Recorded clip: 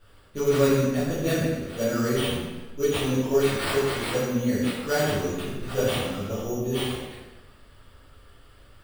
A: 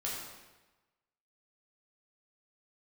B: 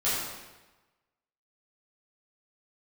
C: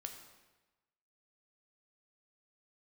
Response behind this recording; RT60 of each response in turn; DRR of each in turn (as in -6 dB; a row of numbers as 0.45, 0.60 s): B; 1.1, 1.1, 1.1 s; -5.5, -11.5, 4.0 dB